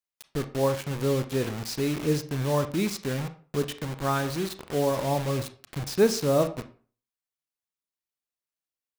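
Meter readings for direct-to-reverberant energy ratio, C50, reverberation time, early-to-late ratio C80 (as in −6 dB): 9.5 dB, 13.5 dB, 0.40 s, 18.5 dB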